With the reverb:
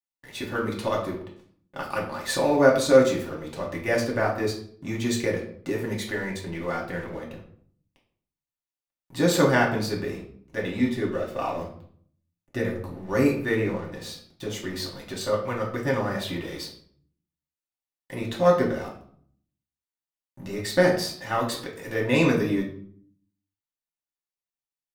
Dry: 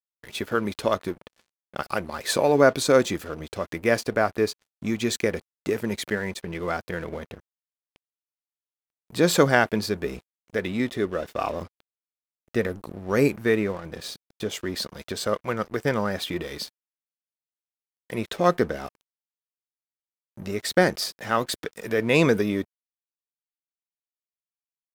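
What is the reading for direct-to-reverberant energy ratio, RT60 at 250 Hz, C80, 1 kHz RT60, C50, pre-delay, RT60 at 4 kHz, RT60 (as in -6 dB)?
-3.0 dB, 0.80 s, 11.0 dB, 0.55 s, 7.0 dB, 3 ms, 0.40 s, 0.55 s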